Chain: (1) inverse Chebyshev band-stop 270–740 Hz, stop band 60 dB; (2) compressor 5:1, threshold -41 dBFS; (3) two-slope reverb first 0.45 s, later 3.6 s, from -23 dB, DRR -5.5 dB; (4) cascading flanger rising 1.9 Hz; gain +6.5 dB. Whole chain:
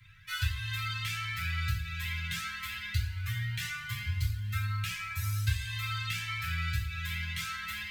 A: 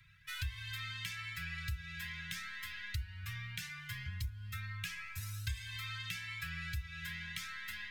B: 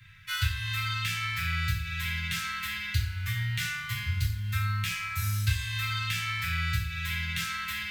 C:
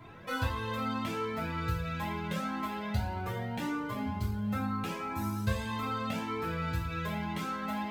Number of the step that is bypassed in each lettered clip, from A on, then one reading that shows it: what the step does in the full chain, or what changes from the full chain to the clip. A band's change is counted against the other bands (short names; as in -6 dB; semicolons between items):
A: 3, crest factor change +2.0 dB; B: 4, loudness change +3.5 LU; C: 1, 250 Hz band +21.5 dB